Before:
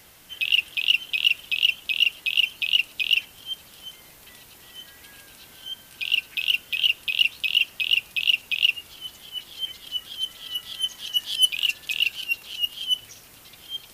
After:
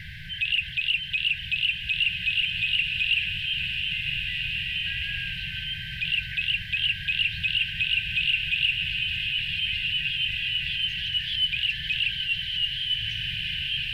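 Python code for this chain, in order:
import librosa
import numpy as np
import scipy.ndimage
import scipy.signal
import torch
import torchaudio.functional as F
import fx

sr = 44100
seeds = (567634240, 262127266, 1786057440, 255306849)

y = fx.high_shelf(x, sr, hz=5600.0, db=-7.0)
y = fx.power_curve(y, sr, exponent=0.5)
y = fx.brickwall_bandstop(y, sr, low_hz=180.0, high_hz=1500.0)
y = fx.air_absorb(y, sr, metres=440.0)
y = fx.rev_bloom(y, sr, seeds[0], attack_ms=2140, drr_db=2.0)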